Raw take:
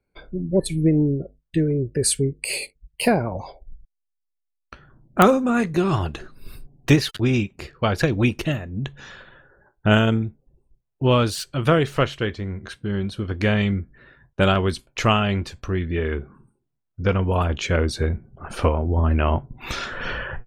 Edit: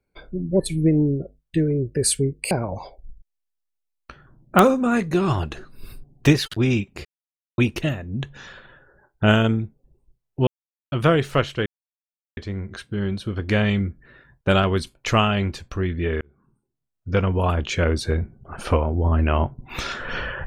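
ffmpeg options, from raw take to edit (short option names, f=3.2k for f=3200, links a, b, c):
-filter_complex "[0:a]asplit=8[a][b][c][d][e][f][g][h];[a]atrim=end=2.512[i];[b]atrim=start=3.138:end=7.68,asetpts=PTS-STARTPTS,afade=t=out:st=4.538:d=0.004:c=hsin[j];[c]atrim=start=7.68:end=8.21,asetpts=PTS-STARTPTS,volume=0[k];[d]atrim=start=8.21:end=11.1,asetpts=PTS-STARTPTS,afade=t=in:d=0.004:c=hsin,afade=t=out:st=2.886:d=0.004:c=hsin[l];[e]atrim=start=11.1:end=11.55,asetpts=PTS-STARTPTS,volume=0[m];[f]atrim=start=11.55:end=12.29,asetpts=PTS-STARTPTS,afade=t=in:d=0.004:c=hsin,afade=t=out:st=0.736:d=0.004:c=hsin,apad=pad_dur=0.71[n];[g]atrim=start=12.29:end=16.13,asetpts=PTS-STARTPTS,afade=t=in:d=0.004:c=hsin,afade=t=out:st=3.836:d=0.004:c=hsin[o];[h]atrim=start=16.13,asetpts=PTS-STARTPTS,afade=t=in:d=0.95[p];[j][k][l][m][n][o][p]concat=n=7:v=0:a=1[q];[i][q]acrossfade=d=0.004:c1=hsin:c2=hsin"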